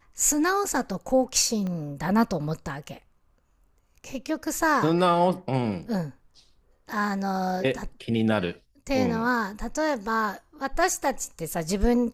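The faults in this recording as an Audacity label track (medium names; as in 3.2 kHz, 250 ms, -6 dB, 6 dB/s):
1.670000	1.670000	pop -22 dBFS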